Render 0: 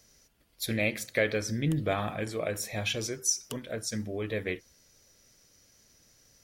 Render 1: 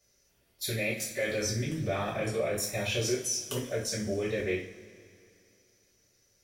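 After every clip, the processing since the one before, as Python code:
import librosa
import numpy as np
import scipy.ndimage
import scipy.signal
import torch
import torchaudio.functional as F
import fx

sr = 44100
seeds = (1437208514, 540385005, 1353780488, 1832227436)

y = fx.level_steps(x, sr, step_db=19)
y = fx.rev_double_slope(y, sr, seeds[0], early_s=0.4, late_s=2.6, knee_db=-19, drr_db=-7.0)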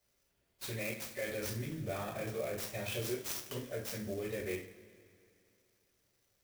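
y = fx.clock_jitter(x, sr, seeds[1], jitter_ms=0.038)
y = y * librosa.db_to_amplitude(-7.5)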